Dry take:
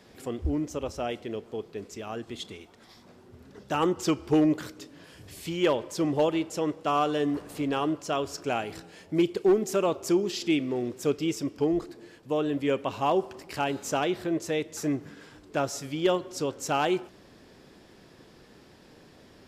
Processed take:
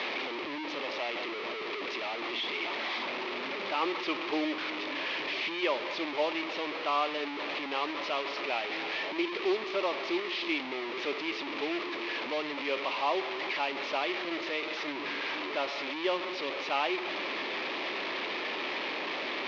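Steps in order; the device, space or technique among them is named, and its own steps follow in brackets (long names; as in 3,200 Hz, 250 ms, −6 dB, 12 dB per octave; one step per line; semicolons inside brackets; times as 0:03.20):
digital answering machine (band-pass filter 340–3,200 Hz; linear delta modulator 32 kbit/s, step −25.5 dBFS; loudspeaker in its box 410–4,000 Hz, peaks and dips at 470 Hz −7 dB, 730 Hz −5 dB, 1,500 Hz −8 dB, 2,300 Hz +5 dB)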